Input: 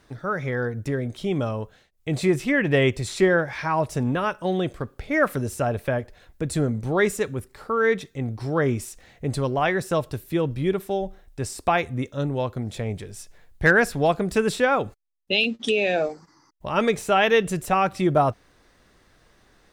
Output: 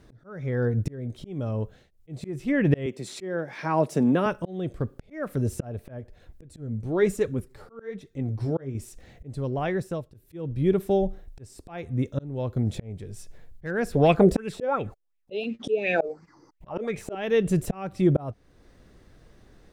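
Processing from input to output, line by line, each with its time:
2.86–4.26 s: high-pass 180 Hz 24 dB/octave
6.43–8.75 s: flange 1.2 Hz, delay 1.6 ms, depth 9.9 ms, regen +43%
9.30–10.14 s: fade out, to -23.5 dB
13.93–17.15 s: sweeping bell 2.8 Hz 410–2500 Hz +17 dB
whole clip: slow attack 549 ms; FFT filter 120 Hz 0 dB, 490 Hz -4 dB, 1 kHz -11 dB; trim +7.5 dB

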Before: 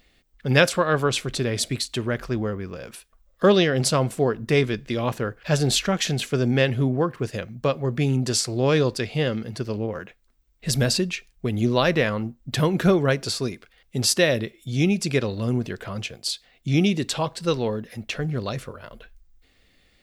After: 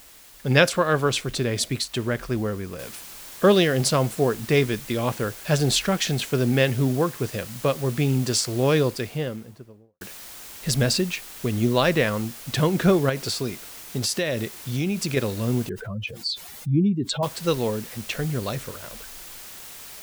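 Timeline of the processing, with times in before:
2.79 s: noise floor step -49 dB -41 dB
8.64–10.01 s: studio fade out
13.09–15.17 s: compression 5:1, threshold -21 dBFS
15.69–17.23 s: spectral contrast enhancement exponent 2.2

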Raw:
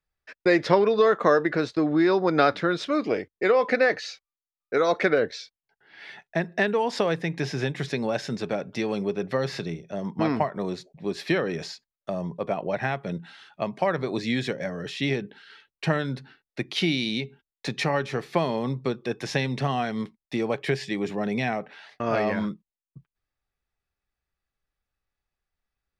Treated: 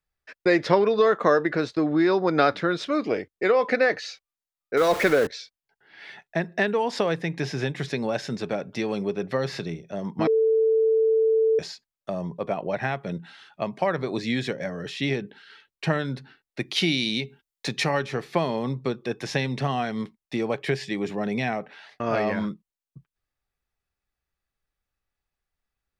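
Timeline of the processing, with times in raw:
4.77–5.27 s: jump at every zero crossing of -26.5 dBFS
10.27–11.59 s: bleep 444 Hz -17 dBFS
16.60–18.05 s: treble shelf 3.3 kHz +6 dB

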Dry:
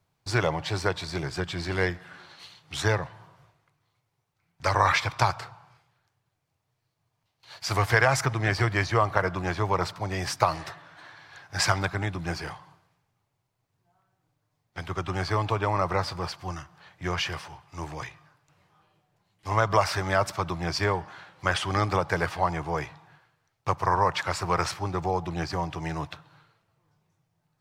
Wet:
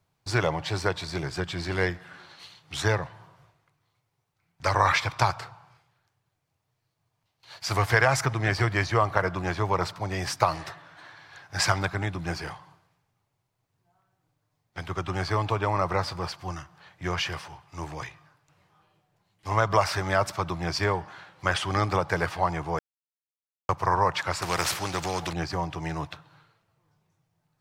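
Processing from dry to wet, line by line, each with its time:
22.79–23.69 s: mute
24.42–25.33 s: spectrum-flattening compressor 2:1

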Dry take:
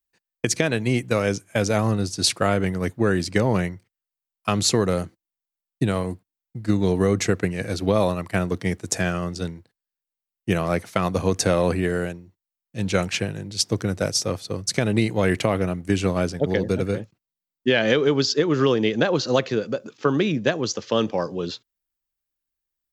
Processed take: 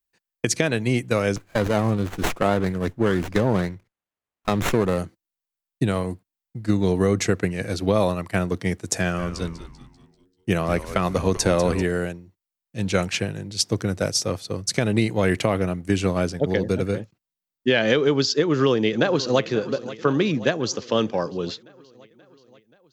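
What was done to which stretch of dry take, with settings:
1.36–4.98 s: sliding maximum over 9 samples
8.97–11.83 s: frequency-shifting echo 195 ms, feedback 45%, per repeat -110 Hz, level -12 dB
18.39–19.42 s: echo throw 530 ms, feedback 65%, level -15.5 dB

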